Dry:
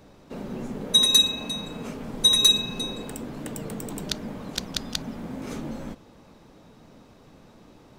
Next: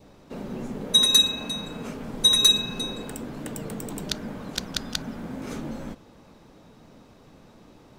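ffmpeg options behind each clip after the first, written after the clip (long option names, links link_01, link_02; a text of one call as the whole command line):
ffmpeg -i in.wav -af "adynamicequalizer=threshold=0.00355:dfrequency=1500:dqfactor=4:tfrequency=1500:tqfactor=4:attack=5:release=100:ratio=0.375:range=3:mode=boostabove:tftype=bell" out.wav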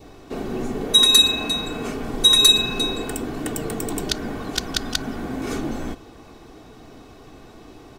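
ffmpeg -i in.wav -filter_complex "[0:a]aecho=1:1:2.7:0.53,asplit=2[link_01][link_02];[link_02]alimiter=limit=-17dB:level=0:latency=1:release=93,volume=-2dB[link_03];[link_01][link_03]amix=inputs=2:normalize=0,volume=2dB" out.wav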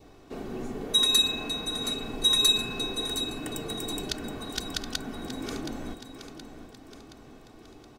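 ffmpeg -i in.wav -af "aecho=1:1:722|1444|2166|2888|3610:0.299|0.149|0.0746|0.0373|0.0187,volume=-8.5dB" out.wav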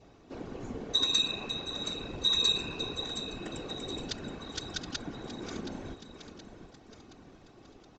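ffmpeg -i in.wav -af "afftfilt=real='hypot(re,im)*cos(2*PI*random(0))':imag='hypot(re,im)*sin(2*PI*random(1))':win_size=512:overlap=0.75,aresample=16000,aresample=44100,volume=1.5dB" out.wav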